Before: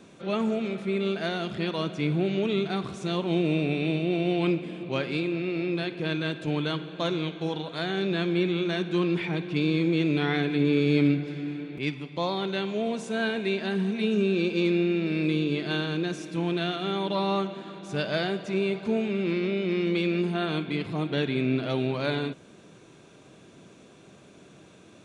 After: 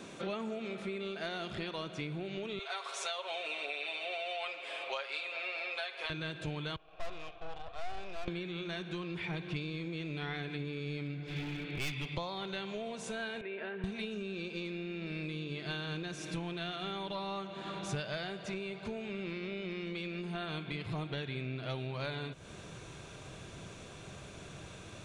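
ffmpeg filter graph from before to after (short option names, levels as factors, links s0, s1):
-filter_complex "[0:a]asettb=1/sr,asplit=3[s0][s1][s2];[s0]atrim=end=2.594[s3];[s1]atrim=start=2.59:end=6.1,asetpts=PTS-STARTPTS,afade=t=in:d=0.004:c=qsin,afade=t=out:st=3.506:d=0.004:c=qsin,highpass=f=580:w=0.5412,highpass=f=580:w=1.3066,aecho=1:1:7.3:0.89,atrim=end_sample=154791[s4];[s2]atrim=start=6.096[s5];[s3][s4]acrossfade=d=0.004:c1=hsin:c2=qsin[s6];[s6][s5]acrossfade=d=0.004:c1=qsin:c2=hsin,asettb=1/sr,asplit=3[s7][s8][s9];[s7]atrim=end=6.764[s10];[s8]atrim=start=6.76:end=8.28,asetpts=PTS-STARTPTS,afade=t=in:d=0.004:c=qsin,afade=t=out:st=1.516:d=0.004:c=qsin,asplit=3[s11][s12][s13];[s11]bandpass=f=730:t=q:w=8,volume=1[s14];[s12]bandpass=f=1090:t=q:w=8,volume=0.501[s15];[s13]bandpass=f=2440:t=q:w=8,volume=0.355[s16];[s14][s15][s16]amix=inputs=3:normalize=0,aeval=exprs='(tanh(158*val(0)+0.65)-tanh(0.65))/158':c=same[s17];[s9]atrim=start=8.276[s18];[s10][s17]acrossfade=d=0.004:c1=hsin:c2=qsin[s19];[s19][s18]acrossfade=d=0.004:c1=qsin:c2=hsin,asettb=1/sr,asplit=3[s20][s21][s22];[s20]atrim=end=11.284[s23];[s21]atrim=start=11.28:end=12.15,asetpts=PTS-STARTPTS,afade=t=in:d=0.004:c=qsin,afade=t=out:st=0.866:d=0.004:c=qsin,equalizer=f=3000:w=1.2:g=6.5,asoftclip=type=hard:threshold=0.0335[s24];[s22]atrim=start=12.146[s25];[s23][s24]acrossfade=d=0.004:c1=hsin:c2=qsin[s26];[s26][s25]acrossfade=d=0.004:c1=qsin:c2=hsin,asettb=1/sr,asplit=3[s27][s28][s29];[s27]atrim=end=13.414[s30];[s28]atrim=start=13.41:end=13.84,asetpts=PTS-STARTPTS,afade=t=in:d=0.004:c=qsin,afade=t=out:st=0.426:d=0.004:c=qsin,acompressor=threshold=0.0398:ratio=3:attack=3.2:release=140:knee=1:detection=peak,highpass=350,equalizer=f=450:t=q:w=4:g=5,equalizer=f=740:t=q:w=4:g=-5,equalizer=f=1100:t=q:w=4:g=-6,equalizer=f=2000:t=q:w=4:g=-3,lowpass=f=2400:w=0.5412,lowpass=f=2400:w=1.3066[s31];[s29]atrim=start=13.836[s32];[s30][s31]acrossfade=d=0.004:c1=hsin:c2=qsin[s33];[s33][s32]acrossfade=d=0.004:c1=qsin:c2=hsin,lowshelf=f=360:g=-6,acompressor=threshold=0.00891:ratio=10,asubboost=boost=9.5:cutoff=81,volume=2"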